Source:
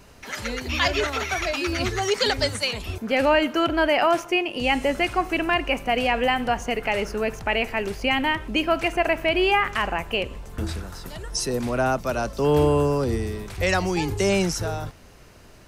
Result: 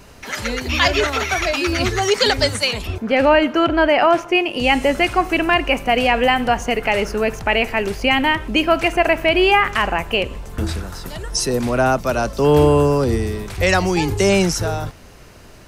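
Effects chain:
0:02.87–0:04.35: low-pass filter 2,900 Hz 6 dB per octave
level +6 dB

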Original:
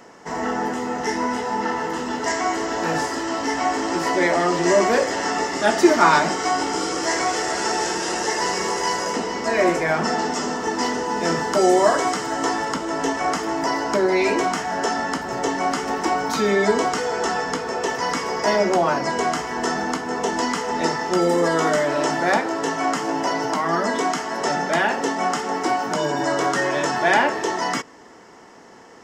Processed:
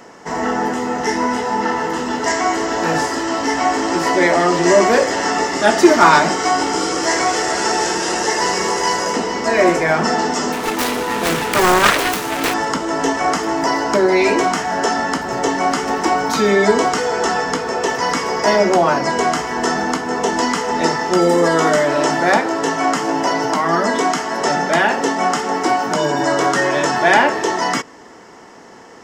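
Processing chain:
0:10.52–0:12.54: phase distortion by the signal itself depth 0.78 ms
gain into a clipping stage and back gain 6 dB
level +5 dB

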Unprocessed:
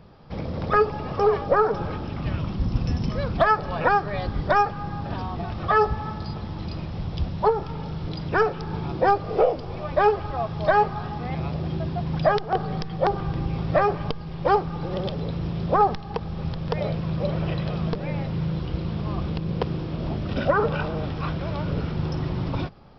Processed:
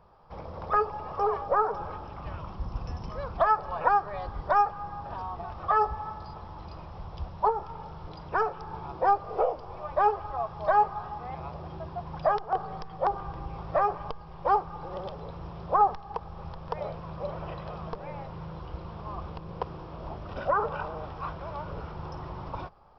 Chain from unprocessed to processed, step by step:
graphic EQ with 10 bands 125 Hz −7 dB, 250 Hz −10 dB, 1,000 Hz +9 dB, 2,000 Hz −5 dB, 4,000 Hz −7 dB
level −7 dB

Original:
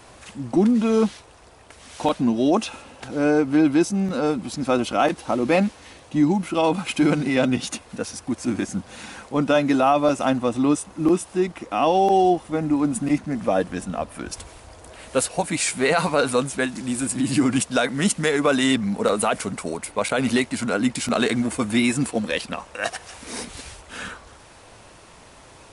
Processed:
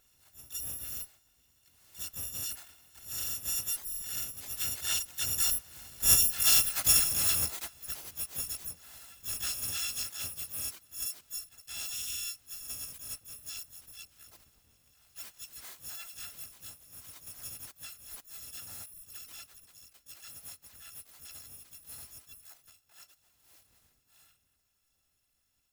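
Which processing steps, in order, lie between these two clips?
samples in bit-reversed order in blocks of 256 samples
source passing by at 0:06.50, 6 m/s, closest 3.3 metres
in parallel at −2 dB: downward compressor 6 to 1, threshold −39 dBFS, peak gain reduction 22 dB
on the sum: pitch-shifted copies added +4 semitones −1 dB, +12 semitones −3 dB
level −6.5 dB

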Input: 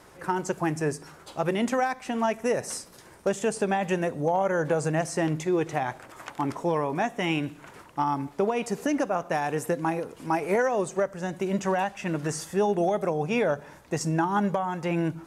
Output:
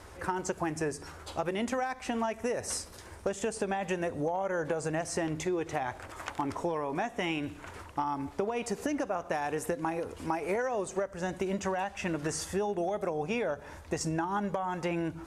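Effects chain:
low-pass filter 12,000 Hz 12 dB per octave
low shelf with overshoot 110 Hz +7 dB, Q 3
downward compressor, threshold −30 dBFS, peak gain reduction 9.5 dB
level +1.5 dB

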